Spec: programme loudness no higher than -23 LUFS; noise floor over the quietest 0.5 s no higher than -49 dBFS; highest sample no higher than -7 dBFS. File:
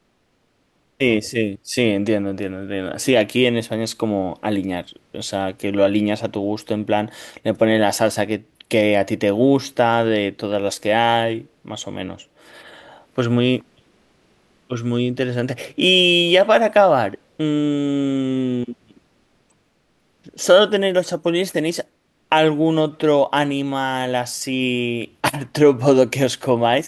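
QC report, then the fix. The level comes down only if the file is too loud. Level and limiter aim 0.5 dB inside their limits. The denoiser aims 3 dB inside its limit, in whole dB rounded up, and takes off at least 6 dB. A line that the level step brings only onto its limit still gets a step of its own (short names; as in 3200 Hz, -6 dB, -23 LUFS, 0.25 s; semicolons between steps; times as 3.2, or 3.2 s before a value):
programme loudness -19.0 LUFS: fail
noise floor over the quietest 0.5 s -64 dBFS: OK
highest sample -2.5 dBFS: fail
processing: gain -4.5 dB; limiter -7.5 dBFS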